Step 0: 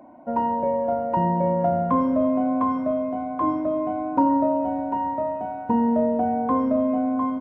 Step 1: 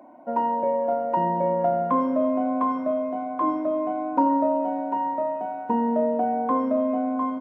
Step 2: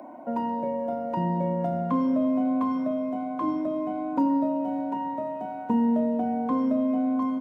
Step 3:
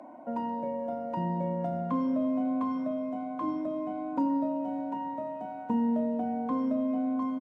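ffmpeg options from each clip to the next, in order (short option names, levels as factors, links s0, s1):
-af "highpass=260"
-filter_complex "[0:a]acrossover=split=250|3000[s0][s1][s2];[s1]acompressor=threshold=0.00398:ratio=2[s3];[s0][s3][s2]amix=inputs=3:normalize=0,volume=2.11"
-af "bandreject=f=380:w=12,aresample=22050,aresample=44100,volume=0.596"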